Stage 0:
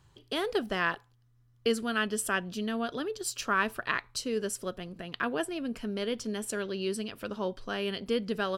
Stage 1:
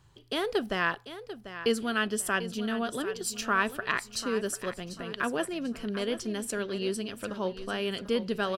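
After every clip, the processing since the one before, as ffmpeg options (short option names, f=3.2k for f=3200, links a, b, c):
-af "aecho=1:1:743|1486|2229:0.237|0.0783|0.0258,volume=1dB"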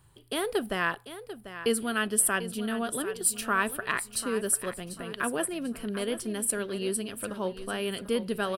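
-af "highshelf=f=7.8k:t=q:w=3:g=7.5"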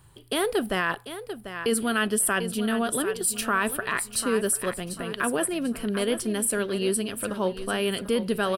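-af "alimiter=limit=-20dB:level=0:latency=1:release=13,volume=5.5dB"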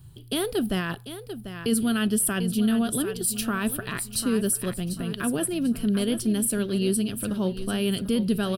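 -af "equalizer=f=125:t=o:w=1:g=6,equalizer=f=500:t=o:w=1:g=-8,equalizer=f=1k:t=o:w=1:g=-10,equalizer=f=2k:t=o:w=1:g=-10,equalizer=f=8k:t=o:w=1:g=-7,volume=5dB"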